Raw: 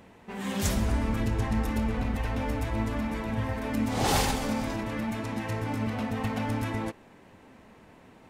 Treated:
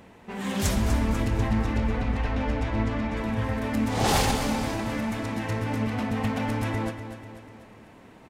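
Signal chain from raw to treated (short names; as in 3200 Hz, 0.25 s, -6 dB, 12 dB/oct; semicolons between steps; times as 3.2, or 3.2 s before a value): 1.37–3.17 LPF 5500 Hz 12 dB/oct; on a send: feedback echo 0.246 s, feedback 52%, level -10.5 dB; on the sum: Doppler distortion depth 0.13 ms; gain +2.5 dB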